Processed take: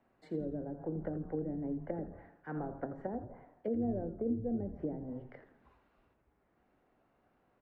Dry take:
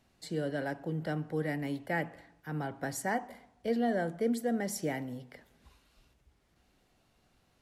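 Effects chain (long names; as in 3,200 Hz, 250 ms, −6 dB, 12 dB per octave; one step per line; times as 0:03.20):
three-way crossover with the lows and the highs turned down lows −12 dB, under 220 Hz, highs −21 dB, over 2,100 Hz
treble cut that deepens with the level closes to 350 Hz, closed at −33 dBFS
high-shelf EQ 3,900 Hz −9.5 dB
hum removal 89.18 Hz, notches 21
echo with shifted repeats 84 ms, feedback 41%, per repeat −130 Hz, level −10.5 dB
level +1.5 dB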